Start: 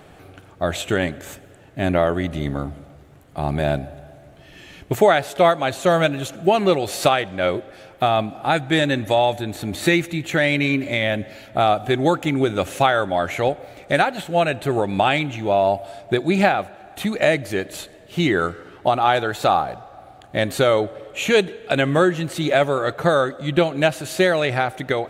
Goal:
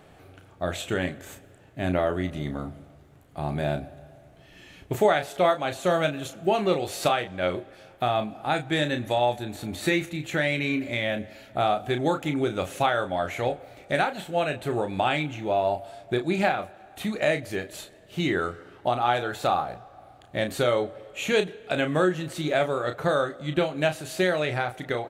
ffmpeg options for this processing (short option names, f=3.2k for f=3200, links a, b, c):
-filter_complex "[0:a]asplit=2[a][b];[b]adelay=33,volume=-8dB[c];[a][c]amix=inputs=2:normalize=0,volume=-7dB"